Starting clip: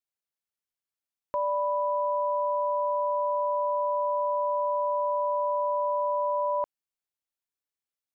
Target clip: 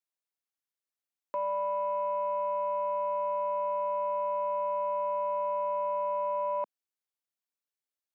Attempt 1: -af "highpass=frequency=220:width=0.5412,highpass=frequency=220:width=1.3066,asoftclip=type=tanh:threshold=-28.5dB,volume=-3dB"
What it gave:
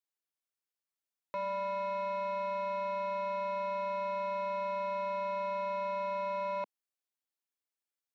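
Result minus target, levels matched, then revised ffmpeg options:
soft clipping: distortion +16 dB
-af "highpass=frequency=220:width=0.5412,highpass=frequency=220:width=1.3066,asoftclip=type=tanh:threshold=-17.5dB,volume=-3dB"

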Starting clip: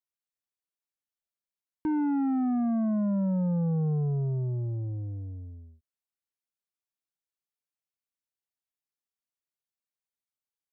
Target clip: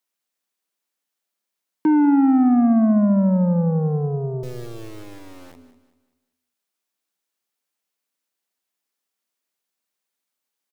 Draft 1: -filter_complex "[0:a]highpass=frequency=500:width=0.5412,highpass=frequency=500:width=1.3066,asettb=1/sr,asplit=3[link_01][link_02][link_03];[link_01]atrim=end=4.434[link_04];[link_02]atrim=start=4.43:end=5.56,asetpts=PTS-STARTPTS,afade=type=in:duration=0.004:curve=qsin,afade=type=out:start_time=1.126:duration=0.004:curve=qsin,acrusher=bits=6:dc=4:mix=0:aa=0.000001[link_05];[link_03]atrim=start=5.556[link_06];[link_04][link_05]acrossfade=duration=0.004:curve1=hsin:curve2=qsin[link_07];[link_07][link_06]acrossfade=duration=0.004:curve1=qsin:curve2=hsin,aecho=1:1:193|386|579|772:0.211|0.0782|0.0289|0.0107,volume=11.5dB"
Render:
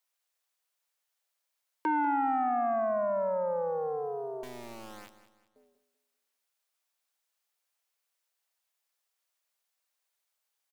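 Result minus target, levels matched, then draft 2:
250 Hz band −10.0 dB
-filter_complex "[0:a]highpass=frequency=180:width=0.5412,highpass=frequency=180:width=1.3066,asettb=1/sr,asplit=3[link_01][link_02][link_03];[link_01]atrim=end=4.434[link_04];[link_02]atrim=start=4.43:end=5.56,asetpts=PTS-STARTPTS,afade=type=in:duration=0.004:curve=qsin,afade=type=out:start_time=1.126:duration=0.004:curve=qsin,acrusher=bits=6:dc=4:mix=0:aa=0.000001[link_05];[link_03]atrim=start=5.556[link_06];[link_04][link_05]acrossfade=duration=0.004:curve1=hsin:curve2=qsin[link_07];[link_07][link_06]acrossfade=duration=0.004:curve1=qsin:curve2=hsin,aecho=1:1:193|386|579|772:0.211|0.0782|0.0289|0.0107,volume=11.5dB"

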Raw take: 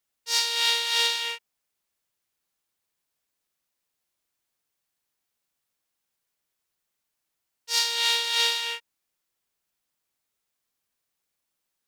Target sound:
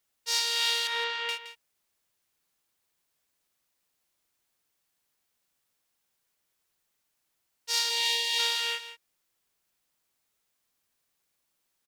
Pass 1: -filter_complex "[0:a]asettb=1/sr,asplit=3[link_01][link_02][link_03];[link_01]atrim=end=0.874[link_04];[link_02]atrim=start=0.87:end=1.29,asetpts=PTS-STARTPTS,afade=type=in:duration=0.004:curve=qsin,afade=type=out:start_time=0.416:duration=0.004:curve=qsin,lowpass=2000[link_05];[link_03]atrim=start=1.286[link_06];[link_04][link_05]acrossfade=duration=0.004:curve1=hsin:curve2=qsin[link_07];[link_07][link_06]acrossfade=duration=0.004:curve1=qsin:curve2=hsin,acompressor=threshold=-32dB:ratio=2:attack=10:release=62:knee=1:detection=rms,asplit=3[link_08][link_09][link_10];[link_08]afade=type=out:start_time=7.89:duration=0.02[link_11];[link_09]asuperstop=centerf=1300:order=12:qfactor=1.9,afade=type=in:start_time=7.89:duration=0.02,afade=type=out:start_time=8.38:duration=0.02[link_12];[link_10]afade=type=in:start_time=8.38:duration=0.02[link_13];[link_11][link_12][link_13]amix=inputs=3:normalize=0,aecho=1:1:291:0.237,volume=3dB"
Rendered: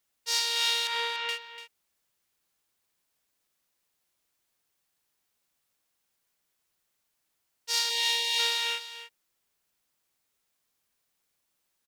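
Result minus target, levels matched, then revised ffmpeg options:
echo 123 ms late
-filter_complex "[0:a]asettb=1/sr,asplit=3[link_01][link_02][link_03];[link_01]atrim=end=0.874[link_04];[link_02]atrim=start=0.87:end=1.29,asetpts=PTS-STARTPTS,afade=type=in:duration=0.004:curve=qsin,afade=type=out:start_time=0.416:duration=0.004:curve=qsin,lowpass=2000[link_05];[link_03]atrim=start=1.286[link_06];[link_04][link_05]acrossfade=duration=0.004:curve1=hsin:curve2=qsin[link_07];[link_07][link_06]acrossfade=duration=0.004:curve1=qsin:curve2=hsin,acompressor=threshold=-32dB:ratio=2:attack=10:release=62:knee=1:detection=rms,asplit=3[link_08][link_09][link_10];[link_08]afade=type=out:start_time=7.89:duration=0.02[link_11];[link_09]asuperstop=centerf=1300:order=12:qfactor=1.9,afade=type=in:start_time=7.89:duration=0.02,afade=type=out:start_time=8.38:duration=0.02[link_12];[link_10]afade=type=in:start_time=8.38:duration=0.02[link_13];[link_11][link_12][link_13]amix=inputs=3:normalize=0,aecho=1:1:168:0.237,volume=3dB"

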